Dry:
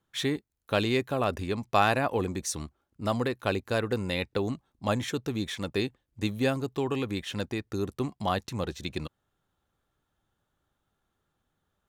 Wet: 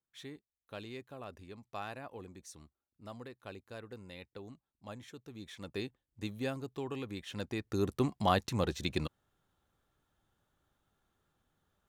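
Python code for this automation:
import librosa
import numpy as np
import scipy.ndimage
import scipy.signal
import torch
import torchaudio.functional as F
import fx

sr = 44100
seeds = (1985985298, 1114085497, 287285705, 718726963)

y = fx.gain(x, sr, db=fx.line((5.25, -19.0), (5.76, -10.0), (7.22, -10.0), (7.88, 0.0)))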